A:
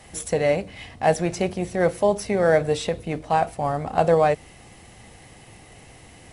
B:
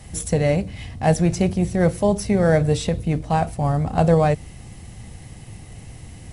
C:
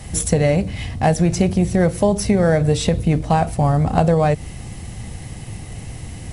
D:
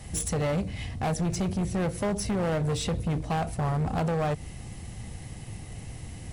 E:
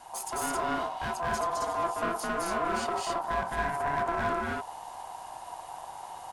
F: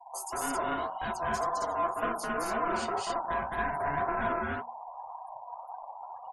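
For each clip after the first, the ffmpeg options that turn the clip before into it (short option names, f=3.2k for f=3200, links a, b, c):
-af "bass=f=250:g=14,treble=f=4k:g=5,volume=-1.5dB"
-af "acompressor=threshold=-19dB:ratio=6,volume=7dB"
-af "asoftclip=type=hard:threshold=-16dB,volume=-8dB"
-filter_complex "[0:a]aeval=exprs='val(0)*sin(2*PI*850*n/s)':c=same,asplit=2[a][b];[b]aecho=0:1:212.8|268.2:0.891|0.891[c];[a][c]amix=inputs=2:normalize=0,volume=-4dB"
-af "afftfilt=real='re*gte(hypot(re,im),0.00891)':imag='im*gte(hypot(re,im),0.00891)':win_size=1024:overlap=0.75,flanger=delay=3.8:depth=9.9:regen=47:speed=1.9:shape=sinusoidal,bandreject=f=60:t=h:w=6,bandreject=f=120:t=h:w=6,bandreject=f=180:t=h:w=6,bandreject=f=240:t=h:w=6,volume=3dB"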